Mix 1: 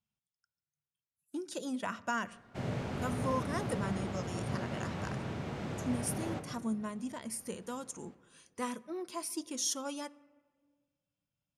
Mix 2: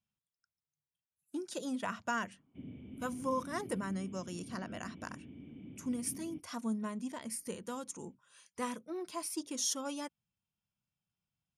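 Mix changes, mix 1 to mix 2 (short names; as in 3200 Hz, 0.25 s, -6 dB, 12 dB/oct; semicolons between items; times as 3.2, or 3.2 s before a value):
background: add vocal tract filter i; reverb: off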